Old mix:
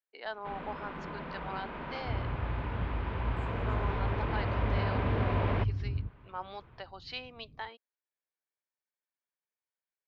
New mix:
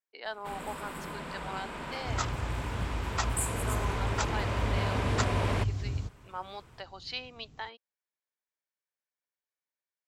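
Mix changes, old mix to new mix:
first sound: remove Bessel low-pass filter 3,000 Hz, order 4
second sound: remove Gaussian smoothing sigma 18 samples
master: remove high-frequency loss of the air 150 metres

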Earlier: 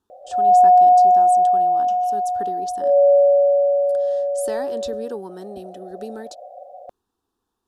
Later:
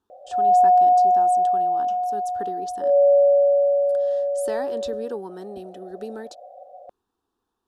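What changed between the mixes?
first sound: send −8.0 dB
second sound: send off
master: add bass and treble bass −3 dB, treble −5 dB

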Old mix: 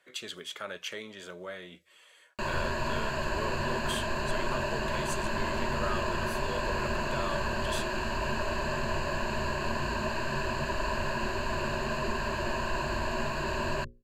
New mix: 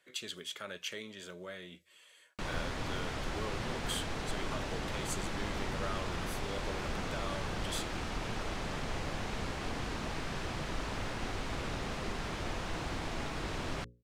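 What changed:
background: remove EQ curve with evenly spaced ripples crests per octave 1.4, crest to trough 16 dB
master: add parametric band 900 Hz −6.5 dB 2.4 octaves

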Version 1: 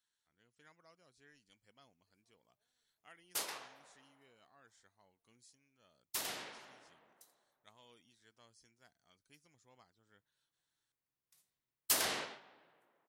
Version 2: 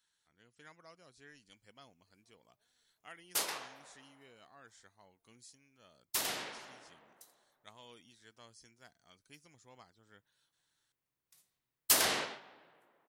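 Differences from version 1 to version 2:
speech +7.5 dB
background +5.0 dB

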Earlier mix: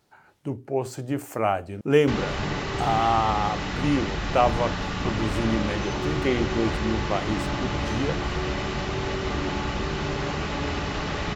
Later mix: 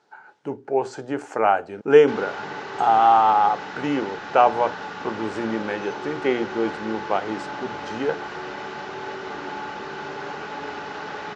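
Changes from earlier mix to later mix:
background −7.5 dB
master: add loudspeaker in its box 220–6,900 Hz, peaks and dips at 440 Hz +7 dB, 850 Hz +10 dB, 1,500 Hz +10 dB

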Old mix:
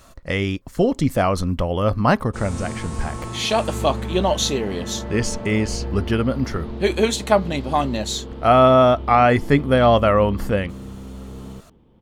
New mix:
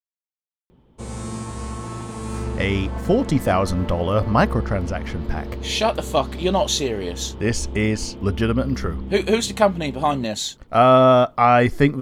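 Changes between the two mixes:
speech: entry +2.30 s
background: entry −1.35 s

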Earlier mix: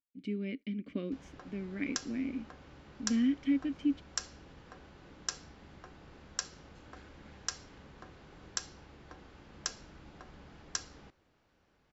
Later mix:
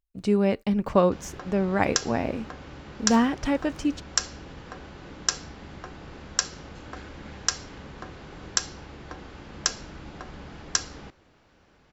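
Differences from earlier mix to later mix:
speech: remove formant filter i
background +11.5 dB

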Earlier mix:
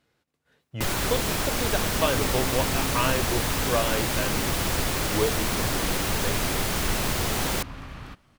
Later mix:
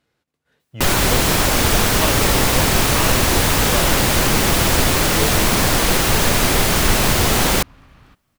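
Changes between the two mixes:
first sound +10.5 dB
second sound −8.5 dB

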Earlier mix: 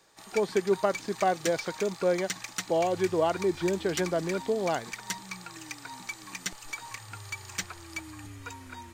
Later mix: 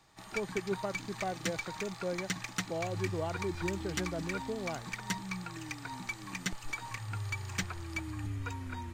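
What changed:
speech −11.5 dB
master: add bass and treble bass +9 dB, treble −6 dB

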